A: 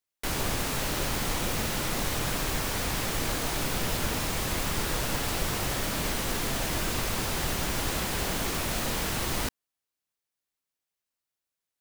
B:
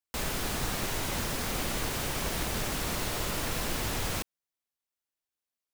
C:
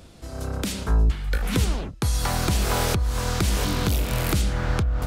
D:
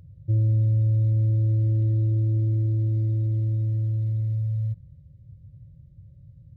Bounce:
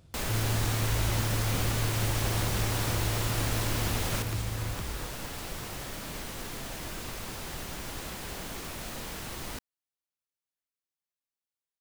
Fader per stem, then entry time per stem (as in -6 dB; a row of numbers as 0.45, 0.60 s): -9.0, -0.5, -15.5, -10.5 dB; 0.10, 0.00, 0.00, 0.00 s